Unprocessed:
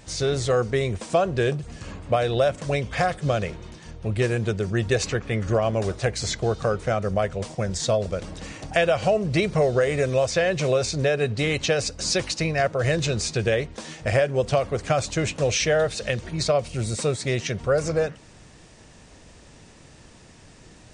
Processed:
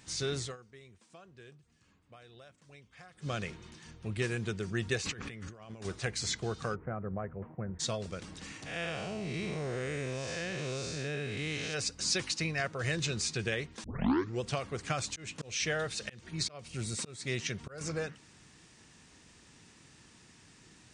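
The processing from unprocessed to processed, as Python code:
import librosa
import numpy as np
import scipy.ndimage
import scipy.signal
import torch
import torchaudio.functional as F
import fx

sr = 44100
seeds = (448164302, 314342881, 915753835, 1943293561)

y = fx.over_compress(x, sr, threshold_db=-34.0, ratio=-1.0, at=(5.0, 5.85))
y = fx.gaussian_blur(y, sr, sigma=6.2, at=(6.74, 7.79), fade=0.02)
y = fx.spec_blur(y, sr, span_ms=226.0, at=(8.65, 11.73), fade=0.02)
y = fx.auto_swell(y, sr, attack_ms=271.0, at=(15.05, 17.81))
y = fx.edit(y, sr, fx.fade_down_up(start_s=0.38, length_s=2.95, db=-20.5, fade_s=0.19),
    fx.tape_start(start_s=13.84, length_s=0.57), tone=tone)
y = fx.highpass(y, sr, hz=180.0, slope=6)
y = fx.peak_eq(y, sr, hz=590.0, db=-11.5, octaves=0.94)
y = y * 10.0 ** (-5.5 / 20.0)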